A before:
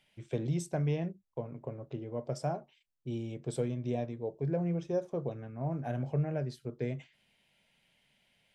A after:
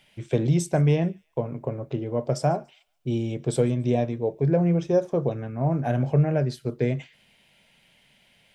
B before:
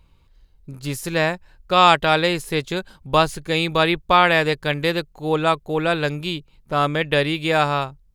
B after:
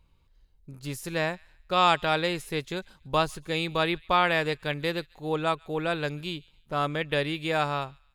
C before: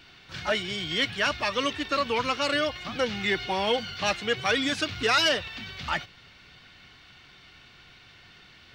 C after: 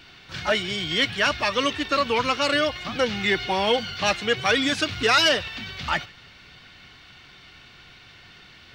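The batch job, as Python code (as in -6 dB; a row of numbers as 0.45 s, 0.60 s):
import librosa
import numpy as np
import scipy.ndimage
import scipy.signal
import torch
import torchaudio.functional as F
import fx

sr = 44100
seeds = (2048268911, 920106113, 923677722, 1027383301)

y = fx.echo_wet_highpass(x, sr, ms=143, feedback_pct=33, hz=1700.0, wet_db=-24)
y = librosa.util.normalize(y) * 10.0 ** (-9 / 20.0)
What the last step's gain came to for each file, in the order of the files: +11.0 dB, -8.0 dB, +4.0 dB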